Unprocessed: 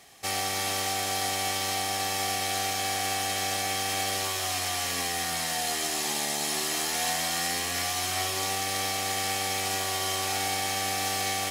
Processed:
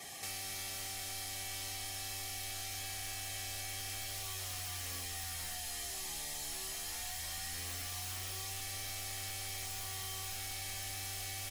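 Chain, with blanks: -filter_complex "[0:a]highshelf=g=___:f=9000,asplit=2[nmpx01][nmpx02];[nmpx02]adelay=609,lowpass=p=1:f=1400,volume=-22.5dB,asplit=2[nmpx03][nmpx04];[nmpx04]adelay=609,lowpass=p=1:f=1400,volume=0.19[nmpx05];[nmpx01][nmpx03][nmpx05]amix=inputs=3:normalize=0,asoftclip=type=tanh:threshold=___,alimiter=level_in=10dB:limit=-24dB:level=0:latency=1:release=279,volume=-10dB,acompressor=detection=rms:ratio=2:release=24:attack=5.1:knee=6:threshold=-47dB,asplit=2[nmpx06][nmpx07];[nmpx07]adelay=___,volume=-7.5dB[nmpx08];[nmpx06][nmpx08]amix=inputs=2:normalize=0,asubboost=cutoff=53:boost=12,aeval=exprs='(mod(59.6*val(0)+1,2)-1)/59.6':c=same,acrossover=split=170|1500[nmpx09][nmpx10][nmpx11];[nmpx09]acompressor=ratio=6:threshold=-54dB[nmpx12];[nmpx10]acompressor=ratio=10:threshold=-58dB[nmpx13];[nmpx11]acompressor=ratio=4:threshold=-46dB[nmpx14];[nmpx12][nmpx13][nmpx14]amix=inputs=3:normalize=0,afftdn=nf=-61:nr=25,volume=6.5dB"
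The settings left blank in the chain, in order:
7, -28.5dB, 34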